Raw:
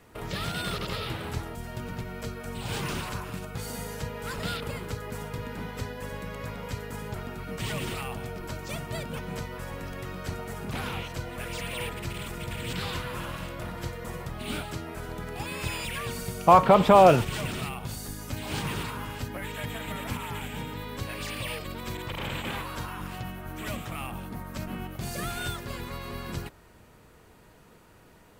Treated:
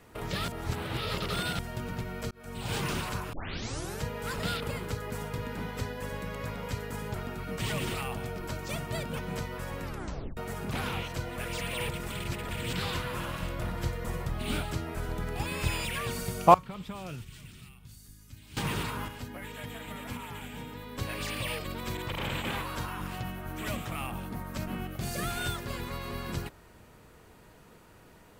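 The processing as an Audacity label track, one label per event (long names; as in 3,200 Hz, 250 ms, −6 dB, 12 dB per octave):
0.480000	1.590000	reverse
2.310000	2.800000	fade in equal-power
3.330000	3.330000	tape start 0.68 s
9.840000	9.840000	tape stop 0.53 s
11.890000	12.490000	reverse
13.420000	15.850000	low-shelf EQ 84 Hz +8.5 dB
16.540000	18.570000	guitar amp tone stack bass-middle-treble 6-0-2
19.080000	20.980000	tuned comb filter 240 Hz, decay 0.16 s
24.810000	25.310000	notch filter 940 Hz, Q 8.1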